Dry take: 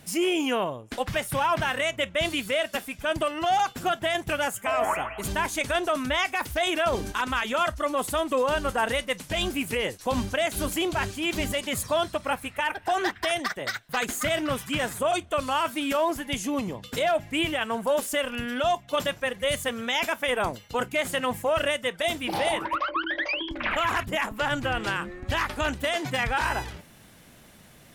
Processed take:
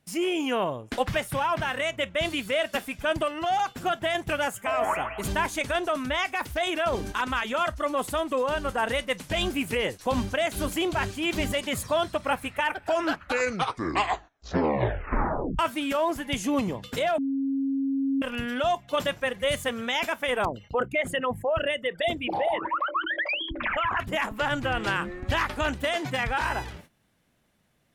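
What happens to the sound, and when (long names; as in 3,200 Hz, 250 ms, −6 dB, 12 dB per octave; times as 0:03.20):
0:12.66: tape stop 2.93 s
0:17.18–0:18.22: beep over 272 Hz −22 dBFS
0:20.45–0:24.00: spectral envelope exaggerated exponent 2
whole clip: noise gate −47 dBFS, range −16 dB; high-shelf EQ 4,900 Hz −5 dB; speech leveller 0.5 s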